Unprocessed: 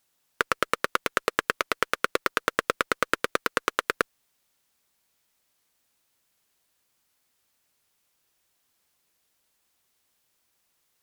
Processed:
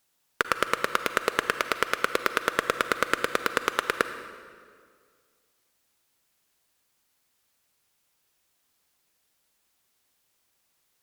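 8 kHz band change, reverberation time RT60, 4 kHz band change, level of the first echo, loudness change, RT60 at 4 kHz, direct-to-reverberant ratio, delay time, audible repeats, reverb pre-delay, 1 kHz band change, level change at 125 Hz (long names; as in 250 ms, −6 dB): +0.5 dB, 2.0 s, +0.5 dB, no echo audible, +0.5 dB, 1.6 s, 9.5 dB, no echo audible, no echo audible, 38 ms, +0.5 dB, 0.0 dB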